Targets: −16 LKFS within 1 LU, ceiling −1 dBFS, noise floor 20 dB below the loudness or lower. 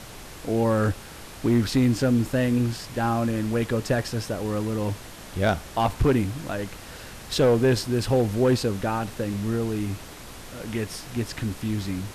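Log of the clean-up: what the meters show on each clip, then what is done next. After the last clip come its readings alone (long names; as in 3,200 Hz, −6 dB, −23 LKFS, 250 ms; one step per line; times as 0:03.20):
share of clipped samples 0.8%; peaks flattened at −14.0 dBFS; background noise floor −42 dBFS; target noise floor −45 dBFS; integrated loudness −25.0 LKFS; sample peak −14.0 dBFS; target loudness −16.0 LKFS
→ clipped peaks rebuilt −14 dBFS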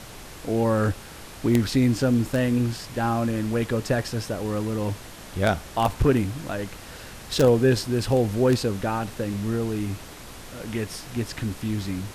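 share of clipped samples 0.0%; background noise floor −42 dBFS; target noise floor −45 dBFS
→ noise reduction from a noise print 6 dB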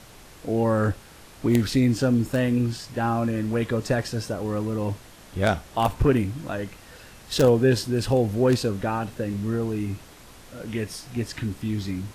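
background noise floor −48 dBFS; integrated loudness −25.0 LKFS; sample peak −5.0 dBFS; target loudness −16.0 LKFS
→ level +9 dB
brickwall limiter −1 dBFS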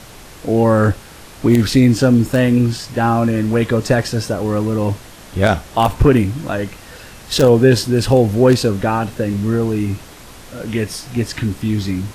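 integrated loudness −16.0 LKFS; sample peak −1.0 dBFS; background noise floor −39 dBFS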